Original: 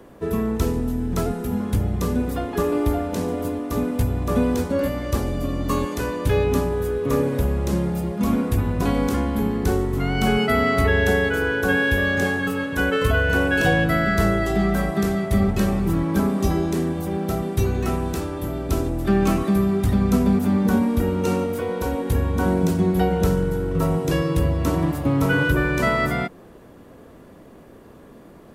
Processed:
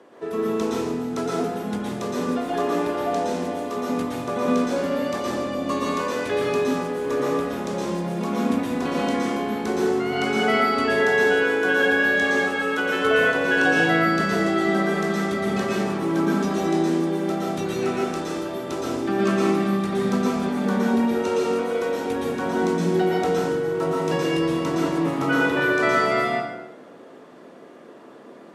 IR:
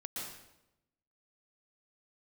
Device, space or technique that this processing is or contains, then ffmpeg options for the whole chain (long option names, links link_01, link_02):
supermarket ceiling speaker: -filter_complex "[0:a]highpass=340,lowpass=6900[link_01];[1:a]atrim=start_sample=2205[link_02];[link_01][link_02]afir=irnorm=-1:irlink=0,volume=3.5dB"